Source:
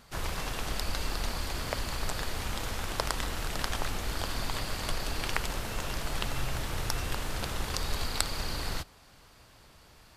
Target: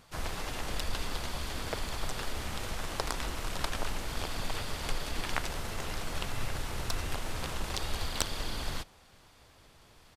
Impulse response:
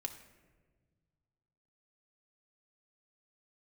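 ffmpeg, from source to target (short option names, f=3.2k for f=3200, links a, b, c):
-filter_complex "[0:a]aeval=exprs='(tanh(2*val(0)+0.65)-tanh(0.65))/2':c=same,asplit=2[a][b];[b]asetrate=33038,aresample=44100,atempo=1.33484,volume=-1dB[c];[a][c]amix=inputs=2:normalize=0,volume=-1dB"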